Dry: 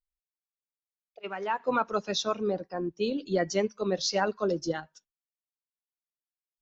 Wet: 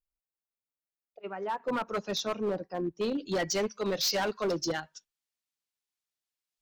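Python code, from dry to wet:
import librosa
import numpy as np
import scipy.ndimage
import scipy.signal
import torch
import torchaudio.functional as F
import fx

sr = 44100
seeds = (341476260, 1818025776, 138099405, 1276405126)

y = fx.peak_eq(x, sr, hz=4400.0, db=fx.steps((0.0, -11.0), (1.89, -2.5), (3.29, 7.0)), octaves=2.8)
y = np.clip(y, -10.0 ** (-25.5 / 20.0), 10.0 ** (-25.5 / 20.0))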